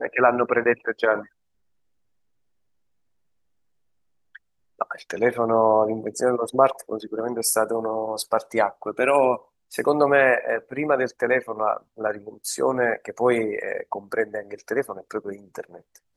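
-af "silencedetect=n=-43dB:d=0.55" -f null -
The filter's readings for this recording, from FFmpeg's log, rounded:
silence_start: 1.26
silence_end: 4.35 | silence_duration: 3.08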